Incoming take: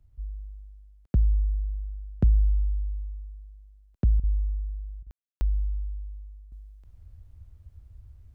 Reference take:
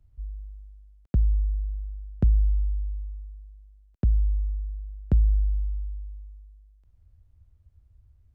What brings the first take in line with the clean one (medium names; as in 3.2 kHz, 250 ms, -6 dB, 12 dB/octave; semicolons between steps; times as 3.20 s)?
room tone fill 5.11–5.41 s; interpolate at 4.20/5.03 s, 35 ms; trim 0 dB, from 6.52 s -8.5 dB